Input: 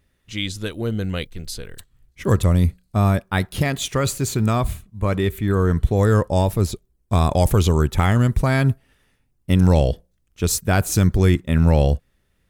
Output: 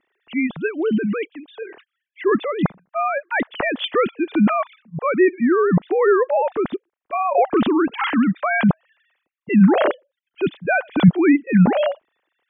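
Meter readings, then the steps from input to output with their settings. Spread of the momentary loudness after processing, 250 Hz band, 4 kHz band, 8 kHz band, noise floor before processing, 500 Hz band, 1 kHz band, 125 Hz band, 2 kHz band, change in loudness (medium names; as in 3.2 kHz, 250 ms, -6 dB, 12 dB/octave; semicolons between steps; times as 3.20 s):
13 LU, +4.5 dB, -3.0 dB, under -40 dB, -67 dBFS, +4.0 dB, +4.0 dB, -7.5 dB, +5.5 dB, +0.5 dB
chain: formants replaced by sine waves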